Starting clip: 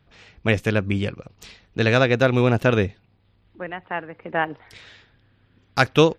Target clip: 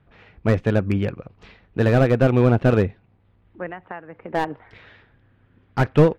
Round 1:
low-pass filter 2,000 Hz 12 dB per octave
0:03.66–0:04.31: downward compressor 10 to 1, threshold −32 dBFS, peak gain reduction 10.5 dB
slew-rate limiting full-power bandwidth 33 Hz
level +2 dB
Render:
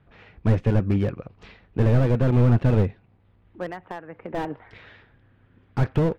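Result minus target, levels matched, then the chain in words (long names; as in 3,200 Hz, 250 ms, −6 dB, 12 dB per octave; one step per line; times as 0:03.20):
slew-rate limiting: distortion +8 dB
low-pass filter 2,000 Hz 12 dB per octave
0:03.66–0:04.31: downward compressor 10 to 1, threshold −32 dBFS, peak gain reduction 10.5 dB
slew-rate limiting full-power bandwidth 109 Hz
level +2 dB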